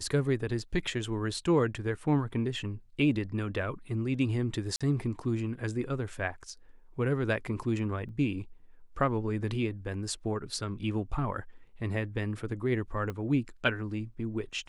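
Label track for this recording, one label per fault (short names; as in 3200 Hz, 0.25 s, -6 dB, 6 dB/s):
4.760000	4.810000	gap 46 ms
8.090000	8.090000	gap 2 ms
13.100000	13.100000	pop -23 dBFS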